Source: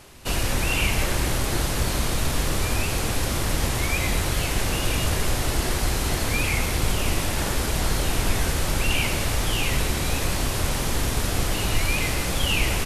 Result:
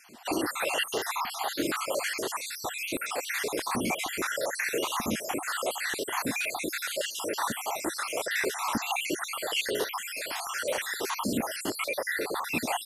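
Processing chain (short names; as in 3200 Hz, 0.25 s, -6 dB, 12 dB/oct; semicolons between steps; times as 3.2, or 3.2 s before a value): random spectral dropouts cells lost 59%; 11.85–12.55 bell 7100 Hz -12.5 dB 0.58 oct; soft clip -12 dBFS, distortion -25 dB; stepped high-pass 6.4 Hz 230–1800 Hz; gain -2.5 dB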